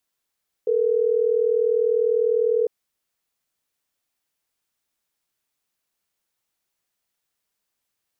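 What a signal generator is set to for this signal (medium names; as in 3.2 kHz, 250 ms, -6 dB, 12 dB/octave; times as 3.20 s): call progress tone ringback tone, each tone -20 dBFS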